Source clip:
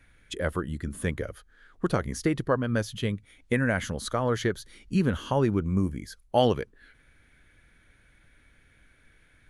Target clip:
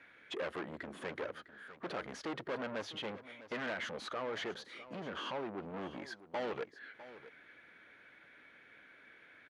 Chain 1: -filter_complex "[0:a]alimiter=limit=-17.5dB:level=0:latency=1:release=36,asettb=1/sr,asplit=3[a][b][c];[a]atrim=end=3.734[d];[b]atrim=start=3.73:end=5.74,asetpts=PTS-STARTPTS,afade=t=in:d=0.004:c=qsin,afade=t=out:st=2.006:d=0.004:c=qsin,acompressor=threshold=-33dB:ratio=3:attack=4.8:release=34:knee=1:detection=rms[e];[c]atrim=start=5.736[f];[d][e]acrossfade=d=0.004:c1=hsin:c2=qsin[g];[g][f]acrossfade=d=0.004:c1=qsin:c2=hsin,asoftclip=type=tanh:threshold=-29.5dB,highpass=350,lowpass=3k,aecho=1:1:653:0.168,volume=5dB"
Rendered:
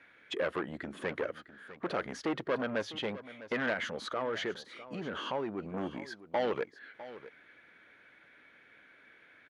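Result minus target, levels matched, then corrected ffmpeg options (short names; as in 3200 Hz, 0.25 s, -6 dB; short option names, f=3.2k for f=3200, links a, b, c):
soft clip: distortion -5 dB
-filter_complex "[0:a]alimiter=limit=-17.5dB:level=0:latency=1:release=36,asettb=1/sr,asplit=3[a][b][c];[a]atrim=end=3.734[d];[b]atrim=start=3.73:end=5.74,asetpts=PTS-STARTPTS,afade=t=in:d=0.004:c=qsin,afade=t=out:st=2.006:d=0.004:c=qsin,acompressor=threshold=-33dB:ratio=3:attack=4.8:release=34:knee=1:detection=rms[e];[c]atrim=start=5.736[f];[d][e]acrossfade=d=0.004:c1=hsin:c2=qsin[g];[g][f]acrossfade=d=0.004:c1=qsin:c2=hsin,asoftclip=type=tanh:threshold=-38.5dB,highpass=350,lowpass=3k,aecho=1:1:653:0.168,volume=5dB"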